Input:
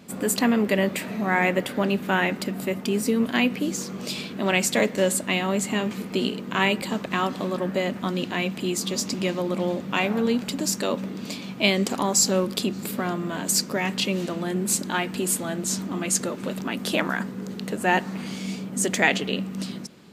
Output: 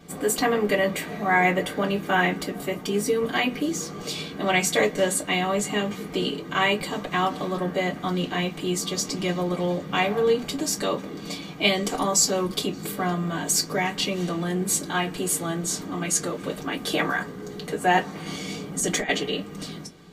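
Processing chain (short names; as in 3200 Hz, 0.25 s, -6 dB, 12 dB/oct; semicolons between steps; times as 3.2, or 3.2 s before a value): 18.26–19.09 negative-ratio compressor -24 dBFS, ratio -0.5; reverb RT60 0.10 s, pre-delay 3 ms, DRR -2 dB; gain -7 dB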